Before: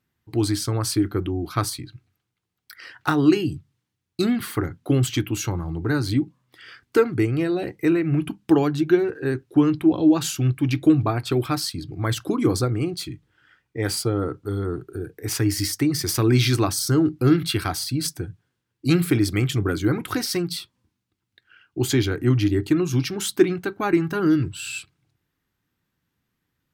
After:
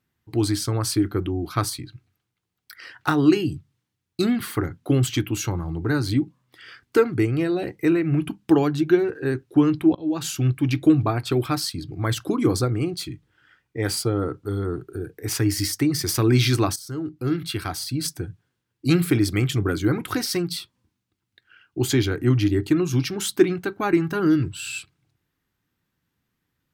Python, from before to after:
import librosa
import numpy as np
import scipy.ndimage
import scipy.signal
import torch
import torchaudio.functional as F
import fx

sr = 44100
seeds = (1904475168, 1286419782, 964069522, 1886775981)

y = fx.edit(x, sr, fx.fade_in_from(start_s=9.95, length_s=0.43, floor_db=-23.0),
    fx.fade_in_from(start_s=16.76, length_s=1.5, floor_db=-16.0), tone=tone)